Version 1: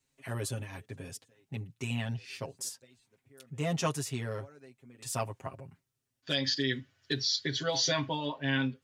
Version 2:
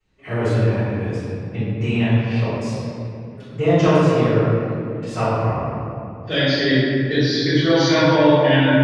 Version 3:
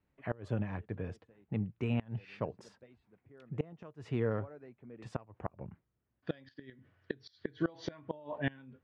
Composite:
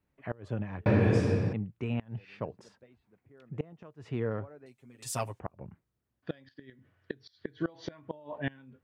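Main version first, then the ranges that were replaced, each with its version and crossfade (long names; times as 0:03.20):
3
0:00.86–0:01.53: punch in from 2
0:04.66–0:05.40: punch in from 1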